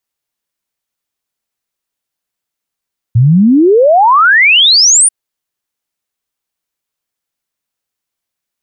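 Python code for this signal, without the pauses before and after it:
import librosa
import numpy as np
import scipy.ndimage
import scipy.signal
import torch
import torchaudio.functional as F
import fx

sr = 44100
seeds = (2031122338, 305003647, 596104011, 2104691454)

y = fx.ess(sr, length_s=1.94, from_hz=110.0, to_hz=9700.0, level_db=-3.5)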